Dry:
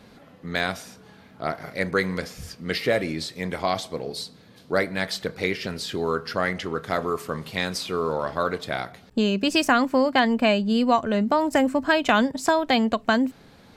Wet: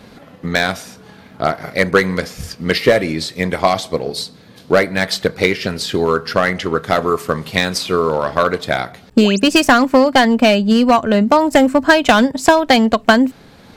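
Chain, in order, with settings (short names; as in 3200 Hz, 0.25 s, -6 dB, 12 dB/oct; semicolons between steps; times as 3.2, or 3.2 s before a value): hard clip -15 dBFS, distortion -15 dB; transient shaper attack +5 dB, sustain -1 dB; painted sound rise, 9.2–9.4, 240–9700 Hz -36 dBFS; gain +8.5 dB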